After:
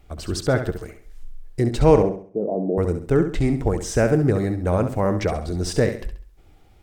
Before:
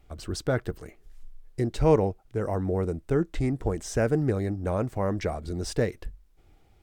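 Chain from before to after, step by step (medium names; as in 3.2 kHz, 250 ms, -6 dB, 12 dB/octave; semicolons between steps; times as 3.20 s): 2.02–2.78 s: elliptic band-pass 170–680 Hz, stop band 50 dB; on a send: flutter echo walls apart 11.5 m, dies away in 0.45 s; on the sum: trim +6 dB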